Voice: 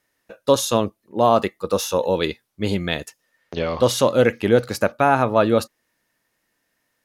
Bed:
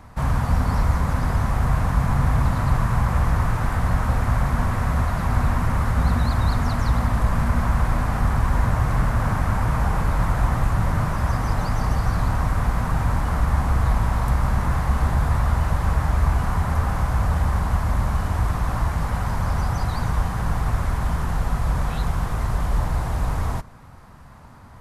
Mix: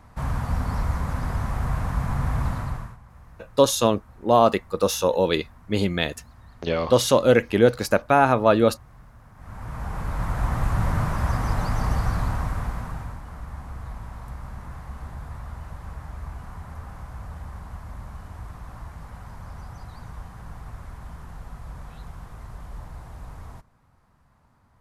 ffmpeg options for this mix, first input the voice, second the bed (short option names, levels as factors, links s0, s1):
-filter_complex "[0:a]adelay=3100,volume=0.944[s0];[1:a]volume=11.2,afade=t=out:st=2.5:d=0.47:silence=0.0707946,afade=t=in:st=9.35:d=1.47:silence=0.0473151,afade=t=out:st=11.99:d=1.2:silence=0.188365[s1];[s0][s1]amix=inputs=2:normalize=0"